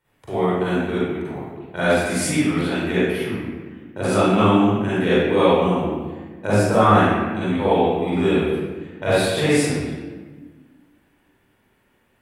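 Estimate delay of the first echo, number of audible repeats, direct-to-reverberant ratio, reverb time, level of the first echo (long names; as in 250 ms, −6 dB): no echo audible, no echo audible, −11.5 dB, 1.4 s, no echo audible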